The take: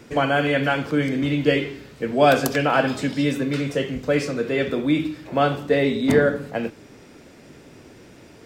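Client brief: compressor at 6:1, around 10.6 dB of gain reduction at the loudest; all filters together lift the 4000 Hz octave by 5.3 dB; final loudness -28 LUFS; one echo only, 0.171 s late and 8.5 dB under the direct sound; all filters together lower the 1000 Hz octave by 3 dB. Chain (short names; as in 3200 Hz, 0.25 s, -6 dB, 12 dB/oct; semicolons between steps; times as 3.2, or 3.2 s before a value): bell 1000 Hz -5.5 dB; bell 4000 Hz +7.5 dB; compressor 6:1, threshold -24 dBFS; echo 0.171 s -8.5 dB; gain -0.5 dB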